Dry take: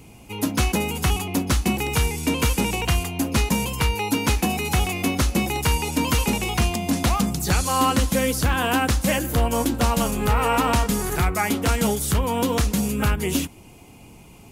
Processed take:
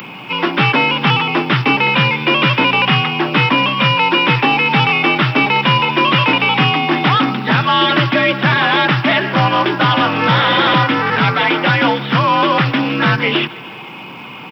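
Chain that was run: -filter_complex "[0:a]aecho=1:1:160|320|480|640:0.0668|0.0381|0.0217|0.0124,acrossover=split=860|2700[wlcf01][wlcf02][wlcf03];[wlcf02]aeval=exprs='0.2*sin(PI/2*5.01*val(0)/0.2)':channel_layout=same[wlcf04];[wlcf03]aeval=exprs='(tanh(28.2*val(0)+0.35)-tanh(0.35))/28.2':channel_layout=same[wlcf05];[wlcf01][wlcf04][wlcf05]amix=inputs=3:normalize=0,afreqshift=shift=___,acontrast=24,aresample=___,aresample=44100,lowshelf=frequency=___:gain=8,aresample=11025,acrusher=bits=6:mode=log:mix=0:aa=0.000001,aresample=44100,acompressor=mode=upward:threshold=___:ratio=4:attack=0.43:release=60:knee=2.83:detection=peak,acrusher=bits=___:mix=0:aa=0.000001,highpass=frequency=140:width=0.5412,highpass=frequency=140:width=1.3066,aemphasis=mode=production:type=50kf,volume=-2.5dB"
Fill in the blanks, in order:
69, 8000, 210, -22dB, 10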